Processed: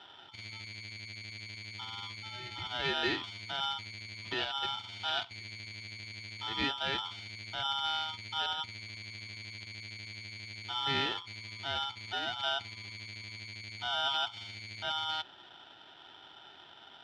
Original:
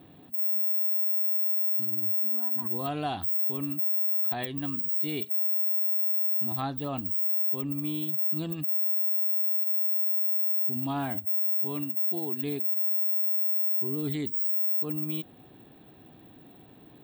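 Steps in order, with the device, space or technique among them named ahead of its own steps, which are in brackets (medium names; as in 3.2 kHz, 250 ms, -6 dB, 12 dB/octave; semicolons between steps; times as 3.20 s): ring modulator pedal into a guitar cabinet (polarity switched at an audio rate 1.1 kHz; cabinet simulation 88–4000 Hz, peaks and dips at 92 Hz +4 dB, 490 Hz -6 dB, 840 Hz -5 dB, 1.2 kHz -10 dB, 2 kHz -4 dB, 3.3 kHz +9 dB); trim +1.5 dB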